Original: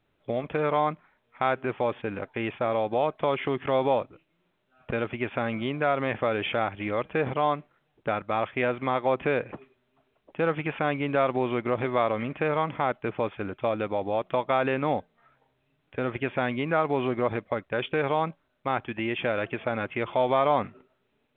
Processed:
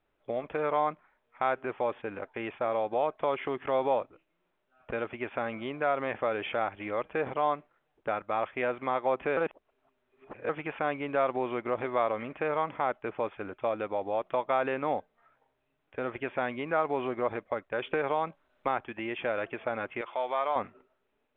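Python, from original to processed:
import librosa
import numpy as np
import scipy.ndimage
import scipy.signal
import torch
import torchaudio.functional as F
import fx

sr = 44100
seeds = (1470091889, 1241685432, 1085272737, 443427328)

y = fx.band_squash(x, sr, depth_pct=70, at=(17.86, 18.81))
y = fx.highpass(y, sr, hz=950.0, slope=6, at=(20.01, 20.56))
y = fx.edit(y, sr, fx.reverse_span(start_s=9.37, length_s=1.12), tone=tone)
y = fx.lowpass(y, sr, hz=1500.0, slope=6)
y = fx.peak_eq(y, sr, hz=130.0, db=-12.0, octaves=2.5)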